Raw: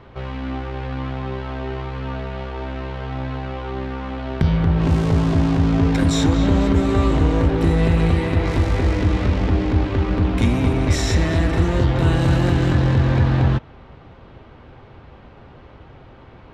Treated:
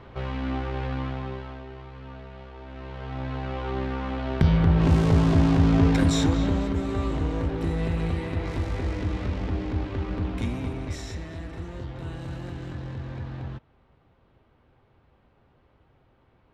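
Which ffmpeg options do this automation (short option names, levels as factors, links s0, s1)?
-af "volume=3.16,afade=t=out:st=0.84:d=0.82:silence=0.251189,afade=t=in:st=2.65:d=1.04:silence=0.251189,afade=t=out:st=5.85:d=0.84:silence=0.398107,afade=t=out:st=10.25:d=0.99:silence=0.375837"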